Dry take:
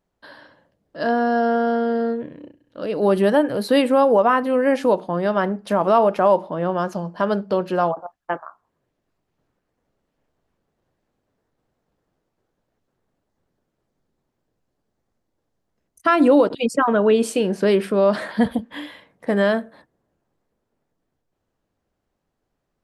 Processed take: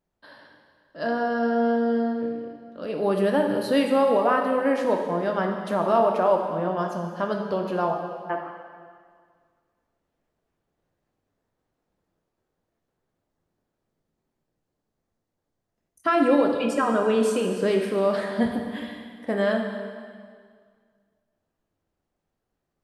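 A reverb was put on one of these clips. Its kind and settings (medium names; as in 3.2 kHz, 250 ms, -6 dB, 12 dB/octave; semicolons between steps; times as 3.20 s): plate-style reverb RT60 1.9 s, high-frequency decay 0.95×, DRR 2 dB; trim -6 dB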